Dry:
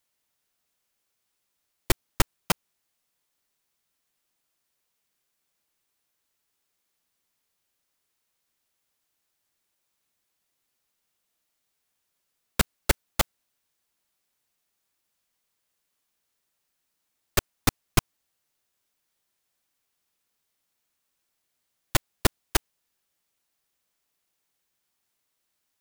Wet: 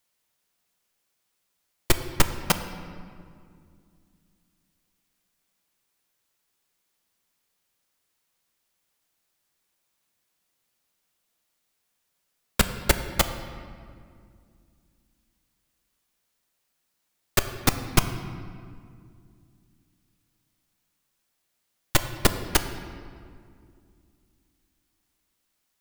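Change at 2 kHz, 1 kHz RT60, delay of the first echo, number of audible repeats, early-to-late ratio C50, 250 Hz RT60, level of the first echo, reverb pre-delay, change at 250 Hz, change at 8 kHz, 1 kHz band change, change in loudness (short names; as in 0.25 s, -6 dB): +2.5 dB, 2.1 s, none, none, 10.0 dB, 3.3 s, none, 4 ms, +3.0 dB, +2.0 dB, +2.5 dB, +2.0 dB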